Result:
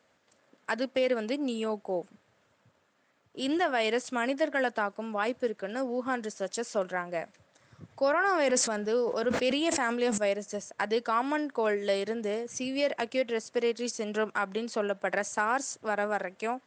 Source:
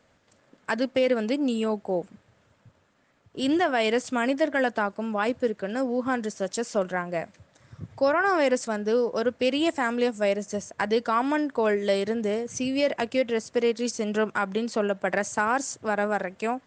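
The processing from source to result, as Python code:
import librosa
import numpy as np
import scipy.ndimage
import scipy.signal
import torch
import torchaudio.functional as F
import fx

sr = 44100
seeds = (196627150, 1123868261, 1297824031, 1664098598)

y = fx.highpass(x, sr, hz=290.0, slope=6)
y = fx.sustainer(y, sr, db_per_s=38.0, at=(7.96, 10.18))
y = y * librosa.db_to_amplitude(-3.0)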